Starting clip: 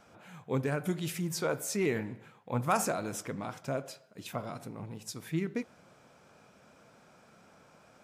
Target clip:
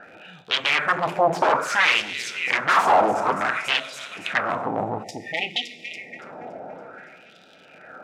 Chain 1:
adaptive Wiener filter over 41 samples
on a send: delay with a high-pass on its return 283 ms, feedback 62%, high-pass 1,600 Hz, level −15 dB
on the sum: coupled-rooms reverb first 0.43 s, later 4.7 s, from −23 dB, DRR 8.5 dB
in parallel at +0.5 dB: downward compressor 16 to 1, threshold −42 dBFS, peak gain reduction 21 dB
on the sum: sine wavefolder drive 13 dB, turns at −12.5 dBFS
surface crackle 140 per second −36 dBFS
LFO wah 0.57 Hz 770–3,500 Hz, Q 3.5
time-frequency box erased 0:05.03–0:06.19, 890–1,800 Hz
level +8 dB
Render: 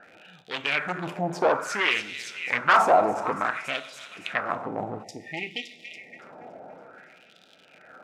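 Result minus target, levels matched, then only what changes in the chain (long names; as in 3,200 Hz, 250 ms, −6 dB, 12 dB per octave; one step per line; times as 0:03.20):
sine wavefolder: distortion −12 dB
change: sine wavefolder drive 20 dB, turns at −12.5 dBFS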